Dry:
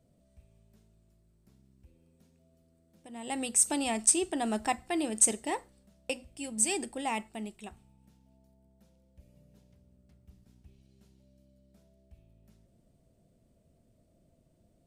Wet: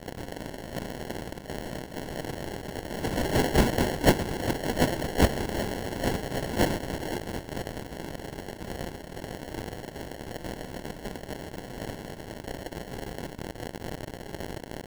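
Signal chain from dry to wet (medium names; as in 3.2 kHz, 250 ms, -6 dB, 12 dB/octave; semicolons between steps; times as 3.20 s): zero-crossing glitches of -24 dBFS; high-pass 1.4 kHz 6 dB/octave; ever faster or slower copies 170 ms, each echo +2 st, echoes 3; harmony voices +12 st -3 dB; sample-and-hold 36×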